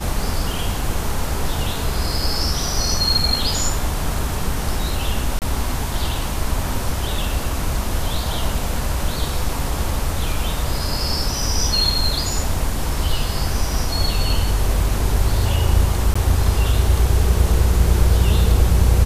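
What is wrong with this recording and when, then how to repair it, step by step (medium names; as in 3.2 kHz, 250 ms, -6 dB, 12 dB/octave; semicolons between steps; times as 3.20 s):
5.39–5.42 s: dropout 28 ms
16.14–16.16 s: dropout 15 ms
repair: interpolate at 5.39 s, 28 ms; interpolate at 16.14 s, 15 ms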